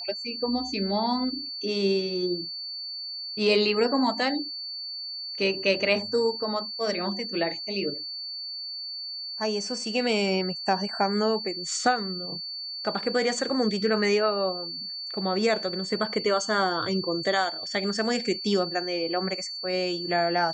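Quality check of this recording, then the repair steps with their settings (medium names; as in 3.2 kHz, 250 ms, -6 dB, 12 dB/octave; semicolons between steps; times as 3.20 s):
whine 4.5 kHz -33 dBFS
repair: band-stop 4.5 kHz, Q 30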